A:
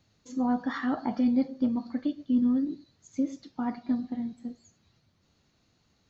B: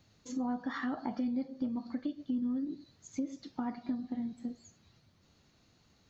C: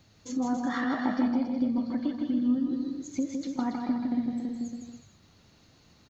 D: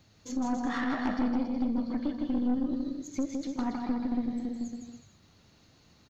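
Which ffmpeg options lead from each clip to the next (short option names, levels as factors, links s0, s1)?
-af "acompressor=threshold=0.0141:ratio=3,volume=1.26"
-af "aecho=1:1:160|280|370|437.5|488.1:0.631|0.398|0.251|0.158|0.1,volume=1.88"
-af "aeval=exprs='0.2*(cos(1*acos(clip(val(0)/0.2,-1,1)))-cos(1*PI/2))+0.0794*(cos(3*acos(clip(val(0)/0.2,-1,1)))-cos(3*PI/2))+0.02*(cos(4*acos(clip(val(0)/0.2,-1,1)))-cos(4*PI/2))+0.0501*(cos(5*acos(clip(val(0)/0.2,-1,1)))-cos(5*PI/2))+0.0158*(cos(7*acos(clip(val(0)/0.2,-1,1)))-cos(7*PI/2))':c=same,asoftclip=type=tanh:threshold=0.0596,volume=1.68"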